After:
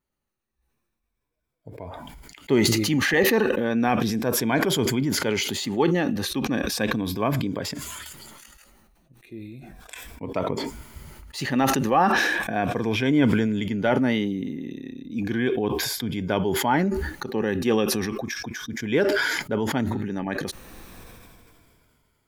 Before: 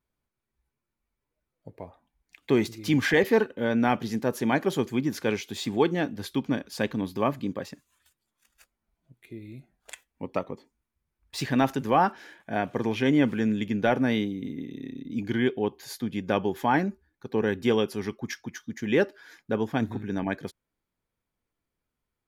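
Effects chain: moving spectral ripple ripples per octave 1.7, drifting -0.35 Hz, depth 7 dB; sustainer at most 23 dB/s

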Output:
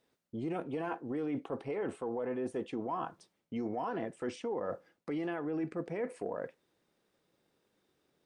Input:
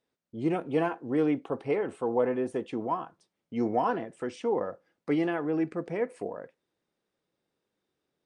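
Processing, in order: transient shaper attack +4 dB, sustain 0 dB; limiter -23.5 dBFS, peak gain reduction 11.5 dB; reverse; compressor 4:1, threshold -41 dBFS, peak gain reduction 11.5 dB; reverse; gain +6 dB

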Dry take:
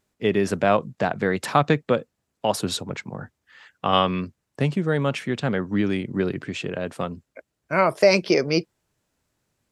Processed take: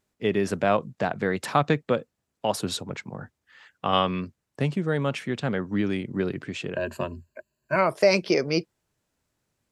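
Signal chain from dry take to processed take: 6.76–7.76 ripple EQ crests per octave 1.4, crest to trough 15 dB; gain -3 dB

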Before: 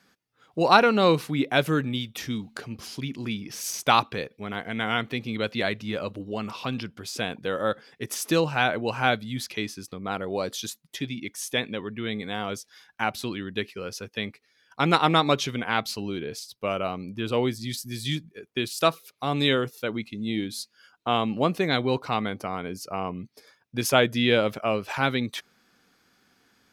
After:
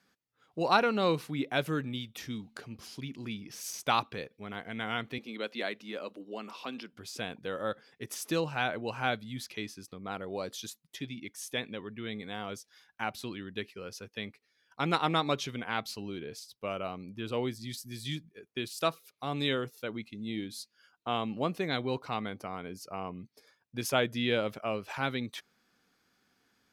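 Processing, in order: 5.18–6.93 HPF 230 Hz 24 dB/oct; gain -8 dB

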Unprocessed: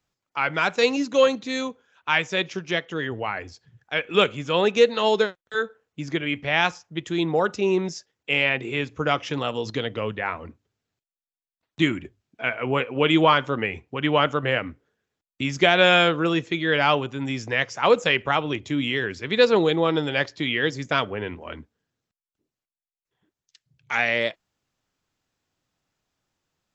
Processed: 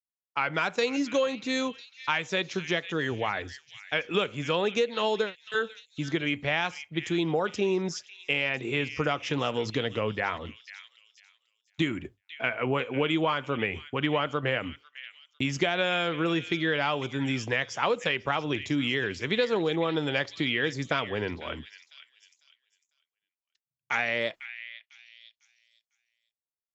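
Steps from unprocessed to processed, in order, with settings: expander -42 dBFS; compressor, threshold -23 dBFS, peak gain reduction 11.5 dB; delay with a stepping band-pass 0.5 s, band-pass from 2600 Hz, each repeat 0.7 oct, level -10.5 dB

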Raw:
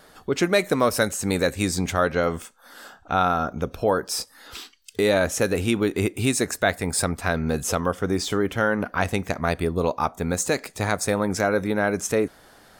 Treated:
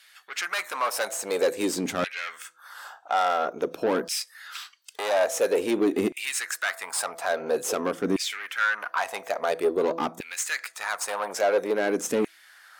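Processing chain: de-hum 166.1 Hz, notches 4; tube stage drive 22 dB, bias 0.45; LFO high-pass saw down 0.49 Hz 220–2500 Hz

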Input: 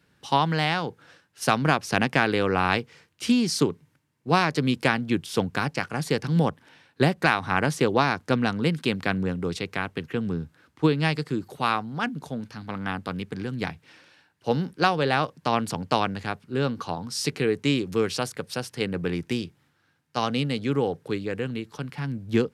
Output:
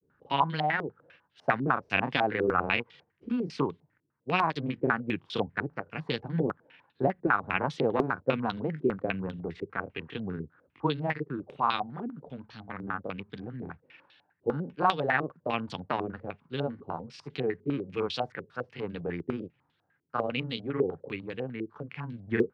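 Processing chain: grains, spray 22 ms, pitch spread up and down by 0 st; stepped low-pass 10 Hz 390–3500 Hz; gain -7.5 dB

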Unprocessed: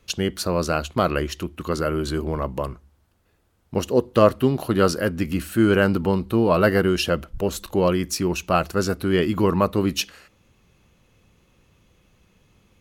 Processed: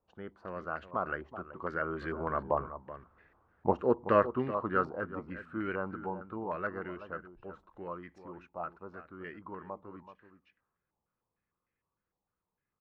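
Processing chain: Doppler pass-by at 3.15, 10 m/s, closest 3.1 m; low shelf 150 Hz -7.5 dB; outdoor echo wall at 65 m, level -12 dB; stepped low-pass 6.6 Hz 860–1900 Hz

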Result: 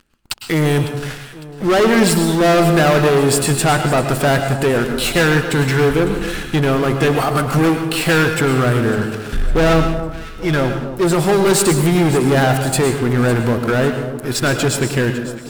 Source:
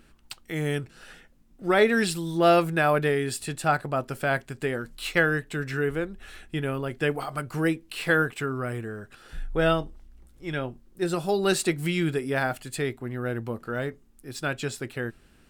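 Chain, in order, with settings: dynamic EQ 2800 Hz, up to -7 dB, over -40 dBFS, Q 0.71; sample leveller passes 5; vibrato 6.2 Hz 6.4 cents; echo with dull and thin repeats by turns 0.277 s, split 1300 Hz, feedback 66%, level -11.5 dB; on a send at -7 dB: reverb RT60 0.55 s, pre-delay 99 ms

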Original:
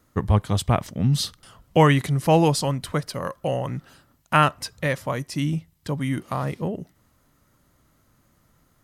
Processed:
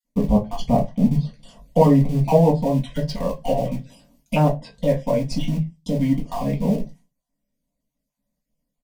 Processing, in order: random spectral dropouts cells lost 28%; treble ducked by the level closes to 950 Hz, closed at -19.5 dBFS; gate with hold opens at -48 dBFS; in parallel at -10.5 dB: Schmitt trigger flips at -28 dBFS; on the sum: fixed phaser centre 350 Hz, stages 6; doubler 19 ms -13 dB; reverb RT60 0.20 s, pre-delay 4 ms, DRR -3 dB; gain -1 dB

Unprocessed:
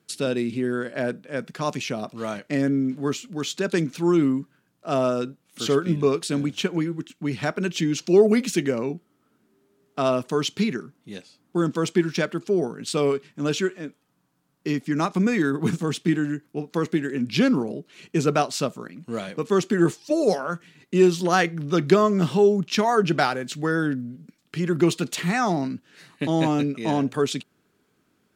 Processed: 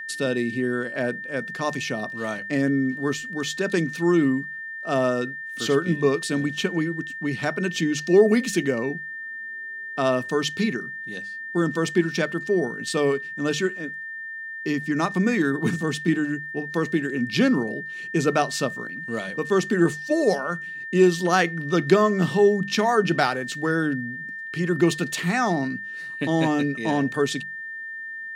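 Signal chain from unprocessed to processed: whine 1800 Hz -32 dBFS; notches 50/100/150/200 Hz

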